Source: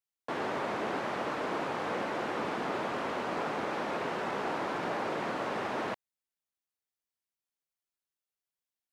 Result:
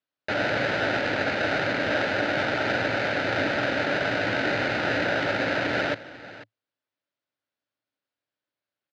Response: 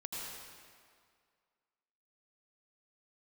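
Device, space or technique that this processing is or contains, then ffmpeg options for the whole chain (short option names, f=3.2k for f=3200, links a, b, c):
ring modulator pedal into a guitar cabinet: -af "aecho=1:1:493:0.15,aeval=exprs='val(0)*sgn(sin(2*PI*1100*n/s))':c=same,highpass=100,equalizer=f=110:t=q:w=4:g=10,equalizer=f=290:t=q:w=4:g=9,equalizer=f=580:t=q:w=4:g=10,equalizer=f=1.5k:t=q:w=4:g=6,lowpass=f=4.5k:w=0.5412,lowpass=f=4.5k:w=1.3066,volume=5dB"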